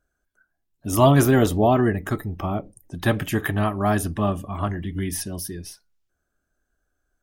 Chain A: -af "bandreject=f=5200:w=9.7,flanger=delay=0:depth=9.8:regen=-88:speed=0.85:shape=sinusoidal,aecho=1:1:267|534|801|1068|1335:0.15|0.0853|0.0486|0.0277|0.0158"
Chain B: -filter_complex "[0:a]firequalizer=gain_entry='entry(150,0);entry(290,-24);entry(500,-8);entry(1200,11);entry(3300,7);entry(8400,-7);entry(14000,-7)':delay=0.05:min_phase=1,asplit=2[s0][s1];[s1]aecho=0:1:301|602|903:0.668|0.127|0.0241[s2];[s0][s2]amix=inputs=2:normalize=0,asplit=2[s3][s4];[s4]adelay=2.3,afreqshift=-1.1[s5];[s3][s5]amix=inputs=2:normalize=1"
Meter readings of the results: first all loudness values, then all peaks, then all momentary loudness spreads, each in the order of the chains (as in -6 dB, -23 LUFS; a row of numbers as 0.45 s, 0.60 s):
-26.5 LUFS, -22.0 LUFS; -9.0 dBFS, -3.5 dBFS; 15 LU, 16 LU